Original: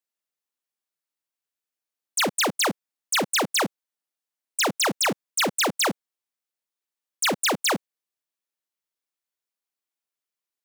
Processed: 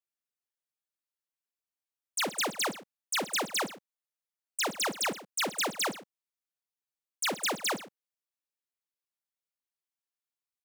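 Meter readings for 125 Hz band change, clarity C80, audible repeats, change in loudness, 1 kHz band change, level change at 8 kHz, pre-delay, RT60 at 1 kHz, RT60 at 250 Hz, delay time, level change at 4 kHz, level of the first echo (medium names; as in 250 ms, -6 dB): -11.5 dB, no reverb, 2, -7.5 dB, -7.5 dB, -7.5 dB, no reverb, no reverb, no reverb, 52 ms, -7.5 dB, -20.0 dB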